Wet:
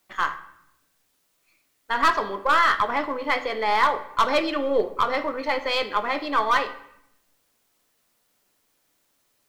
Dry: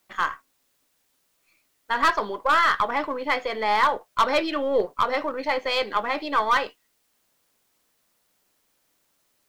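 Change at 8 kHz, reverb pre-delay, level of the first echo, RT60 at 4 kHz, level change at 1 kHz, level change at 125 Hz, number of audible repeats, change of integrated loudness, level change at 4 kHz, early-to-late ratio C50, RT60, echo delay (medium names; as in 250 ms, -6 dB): 0.0 dB, 3 ms, no echo, 0.60 s, +0.5 dB, no reading, no echo, +0.5 dB, +0.5 dB, 13.5 dB, 0.75 s, no echo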